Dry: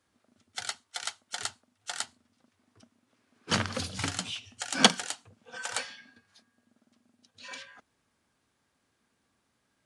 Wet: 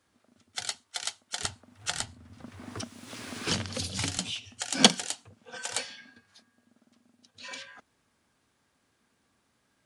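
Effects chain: dynamic bell 1.3 kHz, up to -8 dB, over -47 dBFS, Q 1; 1.44–4.18 s: three bands compressed up and down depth 100%; trim +3 dB

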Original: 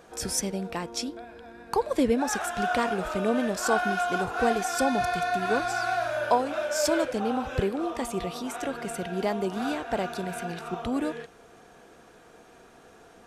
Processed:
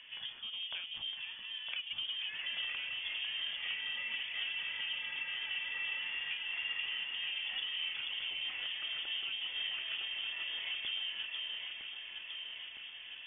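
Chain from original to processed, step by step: compression 6:1, threshold -36 dBFS, peak gain reduction 18 dB; one-sided clip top -38 dBFS; distance through air 410 m; echo whose repeats swap between lows and highs 480 ms, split 950 Hz, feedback 79%, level -2.5 dB; frequency inversion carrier 3.4 kHz

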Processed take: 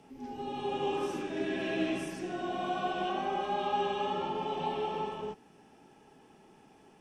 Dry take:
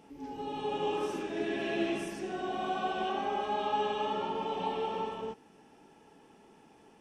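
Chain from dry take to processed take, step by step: frequency shift -19 Hz

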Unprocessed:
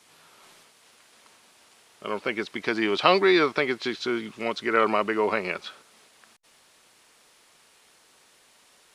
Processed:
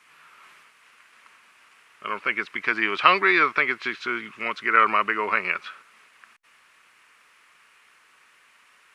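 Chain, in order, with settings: high-order bell 1.7 kHz +13 dB; trim -6.5 dB

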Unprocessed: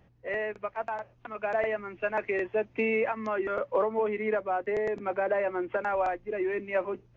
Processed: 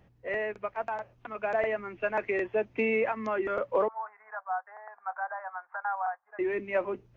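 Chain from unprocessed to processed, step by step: 3.88–6.39 s: elliptic band-pass 750–1600 Hz, stop band 50 dB

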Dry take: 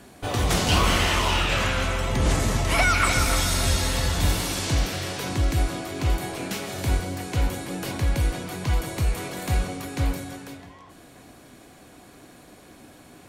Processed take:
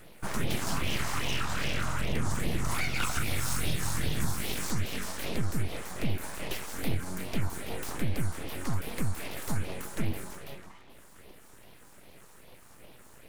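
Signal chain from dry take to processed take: compression, threshold -23 dBFS, peak gain reduction 8 dB; phase shifter stages 4, 2.5 Hz, lowest notch 420–1300 Hz; full-wave rectifier

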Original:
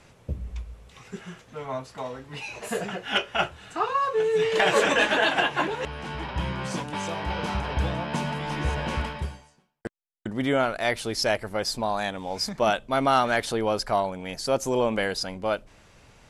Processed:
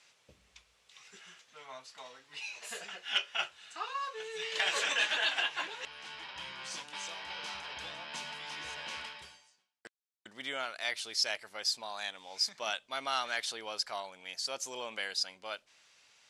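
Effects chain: band-pass filter 4.6 kHz, Q 0.85; trim -1.5 dB

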